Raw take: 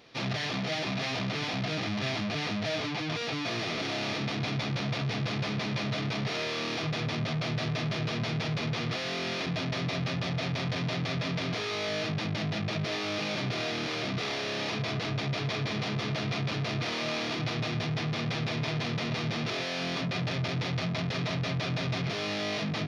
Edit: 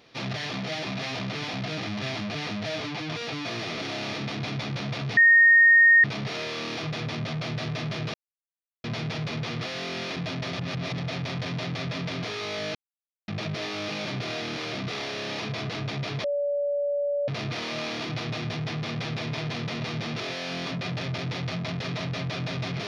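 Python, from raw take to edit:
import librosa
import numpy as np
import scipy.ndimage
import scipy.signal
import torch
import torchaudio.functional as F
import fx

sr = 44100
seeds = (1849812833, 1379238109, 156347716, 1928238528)

y = fx.edit(x, sr, fx.bleep(start_s=5.17, length_s=0.87, hz=1850.0, db=-12.5),
    fx.insert_silence(at_s=8.14, length_s=0.7),
    fx.reverse_span(start_s=9.83, length_s=0.45),
    fx.silence(start_s=12.05, length_s=0.53),
    fx.bleep(start_s=15.54, length_s=1.04, hz=574.0, db=-23.5), tone=tone)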